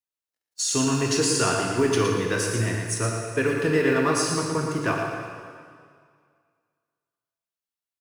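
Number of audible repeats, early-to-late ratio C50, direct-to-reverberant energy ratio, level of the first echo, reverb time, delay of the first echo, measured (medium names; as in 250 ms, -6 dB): 1, 0.5 dB, -0.5 dB, -6.0 dB, 2.1 s, 115 ms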